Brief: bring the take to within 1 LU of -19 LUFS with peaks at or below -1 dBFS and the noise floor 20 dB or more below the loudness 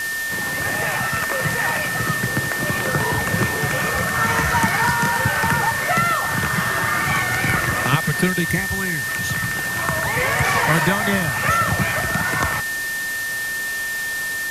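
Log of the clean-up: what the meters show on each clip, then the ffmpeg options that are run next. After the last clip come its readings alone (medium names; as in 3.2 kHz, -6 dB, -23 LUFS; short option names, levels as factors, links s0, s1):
steady tone 1.8 kHz; tone level -23 dBFS; noise floor -25 dBFS; noise floor target -40 dBFS; loudness -19.5 LUFS; peak level -3.5 dBFS; loudness target -19.0 LUFS
-> -af "bandreject=f=1800:w=30"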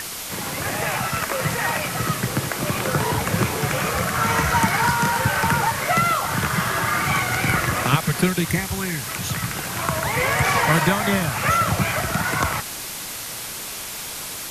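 steady tone not found; noise floor -32 dBFS; noise floor target -42 dBFS
-> -af "afftdn=nr=10:nf=-32"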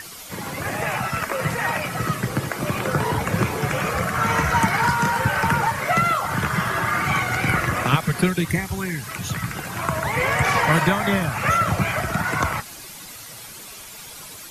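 noise floor -39 dBFS; noise floor target -42 dBFS
-> -af "afftdn=nr=6:nf=-39"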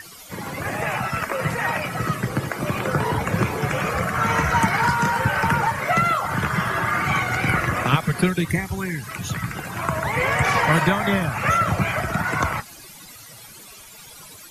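noise floor -43 dBFS; loudness -22.0 LUFS; peak level -4.5 dBFS; loudness target -19.0 LUFS
-> -af "volume=1.41"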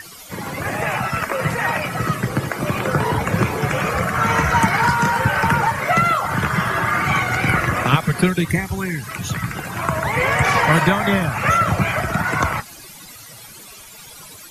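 loudness -19.0 LUFS; peak level -1.5 dBFS; noise floor -40 dBFS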